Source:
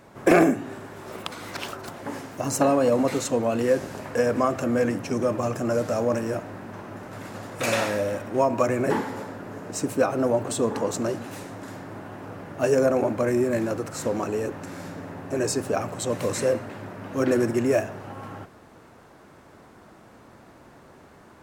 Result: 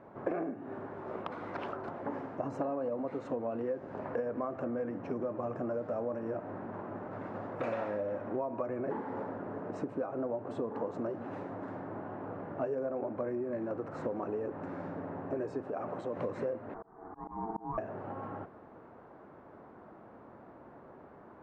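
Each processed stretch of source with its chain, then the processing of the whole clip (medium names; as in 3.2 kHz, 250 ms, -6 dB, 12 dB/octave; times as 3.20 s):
15.63–16.17 s: peaking EQ 83 Hz -8.5 dB 1.5 oct + compression 3:1, threshold -30 dBFS
16.74–17.78 s: low-pass 1.1 kHz 24 dB/octave + ring modulator 560 Hz + slow attack 409 ms
whole clip: low-pass 1.1 kHz 12 dB/octave; compression 12:1, threshold -30 dBFS; bass shelf 160 Hz -10.5 dB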